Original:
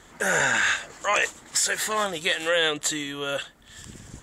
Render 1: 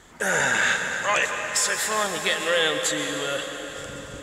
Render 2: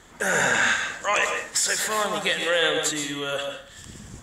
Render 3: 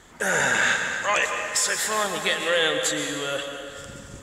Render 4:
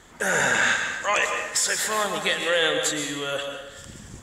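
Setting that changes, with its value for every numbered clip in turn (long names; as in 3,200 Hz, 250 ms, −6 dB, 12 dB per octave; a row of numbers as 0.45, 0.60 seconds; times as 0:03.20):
dense smooth reverb, RT60: 5.3, 0.51, 2.4, 1.1 seconds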